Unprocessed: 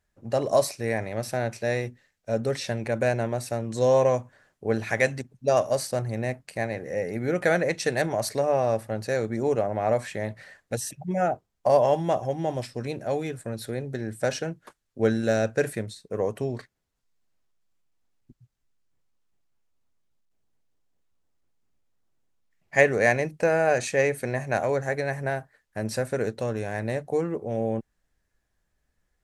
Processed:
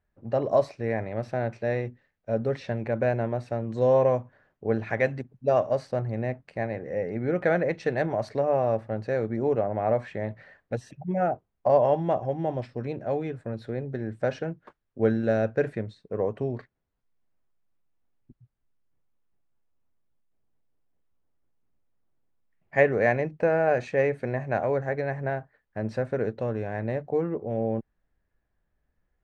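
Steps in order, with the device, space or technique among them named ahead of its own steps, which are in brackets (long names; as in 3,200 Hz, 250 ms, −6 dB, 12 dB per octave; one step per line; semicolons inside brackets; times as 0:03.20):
phone in a pocket (low-pass filter 3,400 Hz 12 dB per octave; high-shelf EQ 2,100 Hz −9 dB)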